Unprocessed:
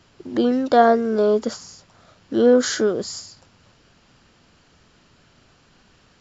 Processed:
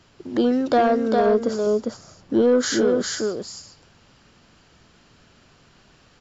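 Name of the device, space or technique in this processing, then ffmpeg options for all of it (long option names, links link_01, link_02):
soft clipper into limiter: -filter_complex "[0:a]asettb=1/sr,asplit=3[link_01][link_02][link_03];[link_01]atrim=end=1.264[link_04];[link_02]atrim=start=1.26:end=2.42,asetpts=PTS-STARTPTS,afade=type=in:duration=0.004:curve=qsin,afade=type=out:start_time=1.156:duration=0.004:curve=qsin,tiltshelf=frequency=1100:gain=4[link_05];[link_03]atrim=start=2.416[link_06];[link_04][link_05]acrossfade=duration=0.004:curve1=hsin:curve2=qsin[link_07];[link_07][link_06]acrossfade=duration=0.004:curve1=qsin:curve2=hsin,aecho=1:1:403:0.562,asoftclip=type=tanh:threshold=-6.5dB,alimiter=limit=-10.5dB:level=0:latency=1:release=227"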